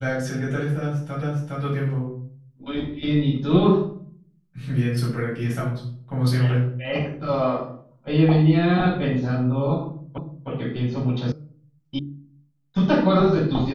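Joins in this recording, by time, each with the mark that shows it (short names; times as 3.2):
1.22 repeat of the last 0.41 s
10.18 repeat of the last 0.31 s
11.32 sound cut off
11.99 sound cut off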